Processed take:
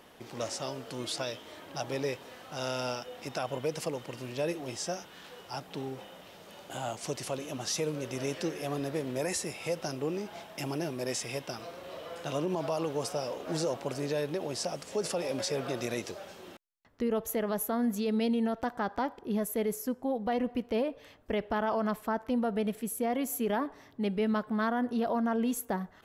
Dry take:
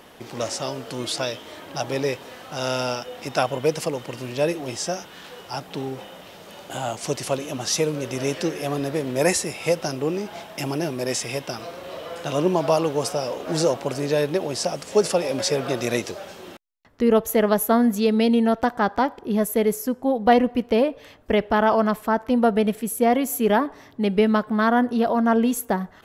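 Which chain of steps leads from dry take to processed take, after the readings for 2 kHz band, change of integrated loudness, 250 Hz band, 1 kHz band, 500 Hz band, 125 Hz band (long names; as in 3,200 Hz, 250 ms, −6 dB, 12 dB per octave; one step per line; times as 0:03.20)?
−10.5 dB, −10.5 dB, −10.0 dB, −11.5 dB, −10.5 dB, −9.0 dB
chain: brickwall limiter −14 dBFS, peak gain reduction 8.5 dB
level −8 dB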